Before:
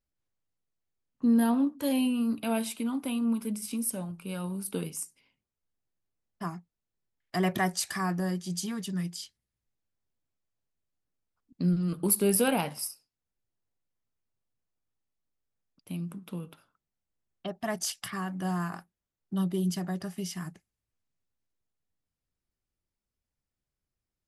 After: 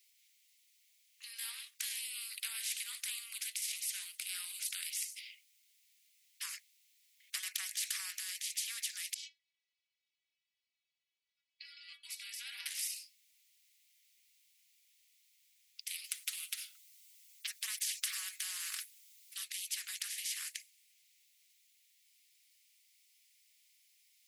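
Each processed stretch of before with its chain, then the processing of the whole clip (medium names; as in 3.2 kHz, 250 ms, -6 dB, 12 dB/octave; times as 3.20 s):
9.14–12.66 s: distance through air 190 m + inharmonic resonator 71 Hz, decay 0.54 s, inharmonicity 0.03
16.04–19.37 s: treble shelf 3.9 kHz +9 dB + comb 5.4 ms, depth 59%
whole clip: compression, threshold -29 dBFS; Chebyshev high-pass 2.1 kHz, order 5; spectrum-flattening compressor 4:1; trim +1.5 dB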